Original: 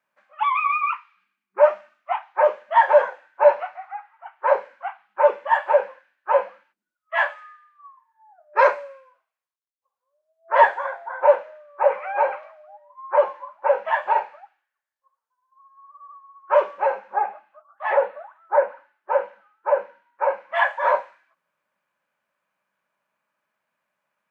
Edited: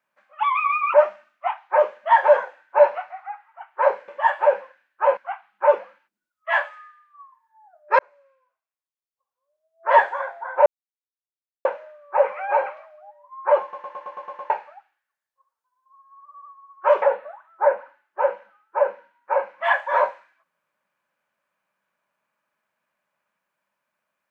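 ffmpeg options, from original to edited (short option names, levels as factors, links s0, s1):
-filter_complex "[0:a]asplit=16[s0][s1][s2][s3][s4][s5][s6][s7][s8][s9][s10][s11][s12][s13][s14][s15];[s0]atrim=end=0.942[s16];[s1]atrim=start=1.588:end=4.732[s17];[s2]atrim=start=5.348:end=6.442[s18];[s3]atrim=start=4.728:end=5.352[s19];[s4]atrim=start=6.438:end=8.64,asetpts=PTS-STARTPTS,afade=t=out:st=2.198:d=0.004:c=hsin[s20];[s5]atrim=start=8.64:end=11.31,asetpts=PTS-STARTPTS,afade=t=in:d=2.09,afade=t=out:st=2.666:d=0.004:c=hsin,apad=pad_dur=0.99[s21];[s6]atrim=start=11.31:end=13.392,asetpts=PTS-STARTPTS,afade=t=in:d=0.004:c=hsin[s22];[s7]atrim=start=13.278:end=13.392[s23];[s8]atrim=start=13.278:end=13.392[s24];[s9]atrim=start=13.278:end=13.392[s25];[s10]atrim=start=13.278:end=13.392[s26];[s11]atrim=start=13.278:end=13.392[s27];[s12]atrim=start=13.278:end=13.392[s28];[s13]atrim=start=13.278:end=13.392[s29];[s14]atrim=start=14.158:end=16.682[s30];[s15]atrim=start=17.928[s31];[s16][s17]acrossfade=d=0.004:c1=hsin:c2=hsin[s32];[s32][s18]acrossfade=d=0.004:c1=hsin:c2=hsin[s33];[s33][s19]acrossfade=d=0.004:c1=hsin:c2=hsin[s34];[s20][s21][s22]concat=n=3:v=0:a=1[s35];[s34][s35]acrossfade=d=0.004:c1=hsin:c2=hsin[s36];[s36][s23]acrossfade=d=0.004:c1=hsin:c2=hsin[s37];[s37][s24]acrossfade=d=0.004:c1=hsin:c2=hsin[s38];[s38][s25]acrossfade=d=0.004:c1=hsin:c2=hsin[s39];[s39][s26]acrossfade=d=0.004:c1=hsin:c2=hsin[s40];[s40][s27]acrossfade=d=0.004:c1=hsin:c2=hsin[s41];[s41][s28]acrossfade=d=0.004:c1=hsin:c2=hsin[s42];[s42][s29]acrossfade=d=0.004:c1=hsin:c2=hsin[s43];[s43][s30]acrossfade=d=0.004:c1=hsin:c2=hsin[s44];[s44][s31]acrossfade=d=0.004:c1=hsin:c2=hsin"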